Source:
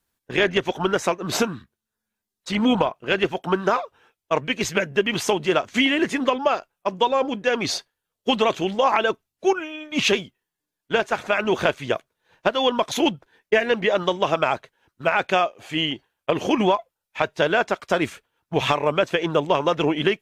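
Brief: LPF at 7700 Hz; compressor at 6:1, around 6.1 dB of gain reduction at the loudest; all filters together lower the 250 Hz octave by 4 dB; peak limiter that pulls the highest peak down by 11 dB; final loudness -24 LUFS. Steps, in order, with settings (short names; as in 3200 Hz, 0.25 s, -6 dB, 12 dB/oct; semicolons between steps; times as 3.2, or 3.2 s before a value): LPF 7700 Hz; bell 250 Hz -5.5 dB; compressor 6:1, threshold -22 dBFS; gain +7 dB; limiter -12 dBFS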